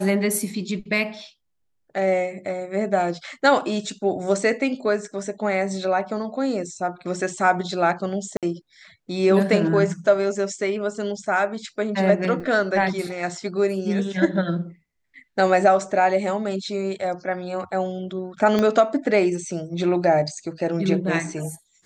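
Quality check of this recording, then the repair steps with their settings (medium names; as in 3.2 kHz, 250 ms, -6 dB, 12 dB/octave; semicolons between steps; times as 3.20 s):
8.37–8.43 s: dropout 57 ms
12.40 s: dropout 4.2 ms
18.59 s: pop -10 dBFS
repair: de-click; interpolate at 8.37 s, 57 ms; interpolate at 12.40 s, 4.2 ms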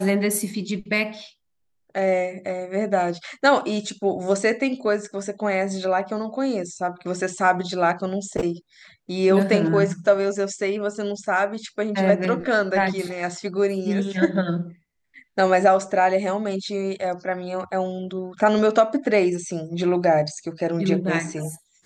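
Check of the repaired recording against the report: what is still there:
18.59 s: pop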